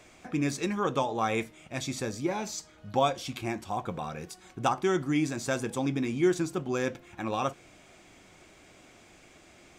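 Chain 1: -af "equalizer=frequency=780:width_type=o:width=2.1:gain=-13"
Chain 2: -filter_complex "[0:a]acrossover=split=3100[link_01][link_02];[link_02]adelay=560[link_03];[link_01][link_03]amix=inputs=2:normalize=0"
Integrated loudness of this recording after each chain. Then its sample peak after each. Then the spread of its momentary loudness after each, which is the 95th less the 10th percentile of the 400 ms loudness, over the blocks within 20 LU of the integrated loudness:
−36.0, −31.0 LKFS; −19.0, −13.5 dBFS; 10, 12 LU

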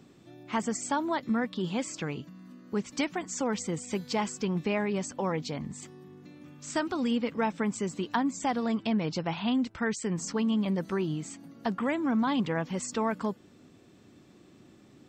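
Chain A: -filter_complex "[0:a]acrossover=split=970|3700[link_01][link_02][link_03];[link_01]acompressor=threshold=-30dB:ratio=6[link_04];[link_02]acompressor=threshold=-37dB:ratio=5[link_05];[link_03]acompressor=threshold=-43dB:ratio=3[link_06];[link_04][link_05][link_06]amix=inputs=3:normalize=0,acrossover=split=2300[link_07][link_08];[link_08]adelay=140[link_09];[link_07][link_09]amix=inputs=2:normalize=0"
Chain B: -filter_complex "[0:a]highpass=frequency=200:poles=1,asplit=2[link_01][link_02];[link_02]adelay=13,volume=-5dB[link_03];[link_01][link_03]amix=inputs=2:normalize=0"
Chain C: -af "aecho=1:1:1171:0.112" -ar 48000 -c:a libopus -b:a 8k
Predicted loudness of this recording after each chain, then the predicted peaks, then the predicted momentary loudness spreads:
−35.0, −31.0, −32.0 LKFS; −19.0, −13.5, −15.5 dBFS; 9, 10, 17 LU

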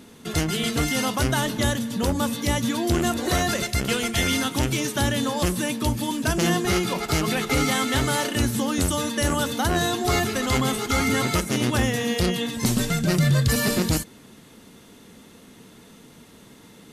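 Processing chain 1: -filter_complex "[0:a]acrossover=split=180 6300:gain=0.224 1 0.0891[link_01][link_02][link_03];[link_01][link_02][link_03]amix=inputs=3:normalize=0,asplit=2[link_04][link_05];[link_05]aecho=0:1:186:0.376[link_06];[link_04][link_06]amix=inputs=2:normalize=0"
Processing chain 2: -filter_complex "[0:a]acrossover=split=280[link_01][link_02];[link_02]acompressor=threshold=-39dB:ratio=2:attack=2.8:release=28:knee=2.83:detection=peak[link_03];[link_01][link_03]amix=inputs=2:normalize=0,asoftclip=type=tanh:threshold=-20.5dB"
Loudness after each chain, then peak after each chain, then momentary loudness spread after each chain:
−24.5, −29.0 LKFS; −10.0, −20.5 dBFS; 3, 20 LU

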